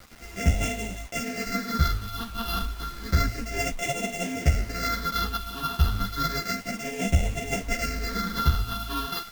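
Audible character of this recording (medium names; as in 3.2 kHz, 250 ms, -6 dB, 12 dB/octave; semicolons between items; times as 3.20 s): a buzz of ramps at a fixed pitch in blocks of 64 samples; phasing stages 6, 0.31 Hz, lowest notch 570–1200 Hz; a quantiser's noise floor 8-bit, dither none; a shimmering, thickened sound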